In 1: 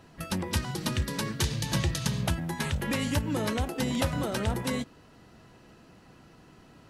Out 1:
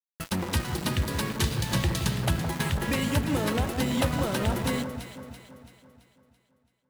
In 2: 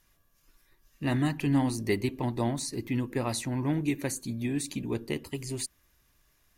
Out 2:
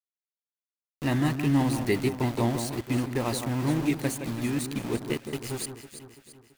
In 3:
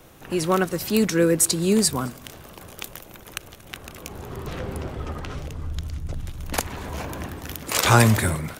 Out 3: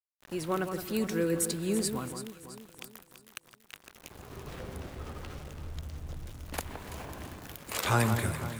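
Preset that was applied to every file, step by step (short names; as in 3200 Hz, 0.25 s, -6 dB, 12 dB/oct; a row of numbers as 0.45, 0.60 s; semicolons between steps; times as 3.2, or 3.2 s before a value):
sample gate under -35 dBFS; dynamic EQ 5900 Hz, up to -4 dB, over -45 dBFS, Q 1.8; echo with dull and thin repeats by turns 0.167 s, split 1600 Hz, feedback 68%, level -7.5 dB; normalise peaks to -12 dBFS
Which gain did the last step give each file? +2.0, +2.0, -10.5 dB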